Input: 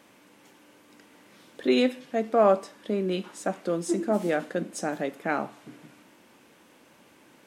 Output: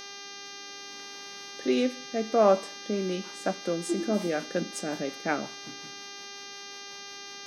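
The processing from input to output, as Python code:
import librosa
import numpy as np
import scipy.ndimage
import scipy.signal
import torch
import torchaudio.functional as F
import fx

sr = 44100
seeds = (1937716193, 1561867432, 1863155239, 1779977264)

y = fx.rotary_switch(x, sr, hz=0.65, then_hz=5.5, switch_at_s=2.48)
y = fx.dmg_buzz(y, sr, base_hz=400.0, harmonics=16, level_db=-43.0, tilt_db=0, odd_only=False)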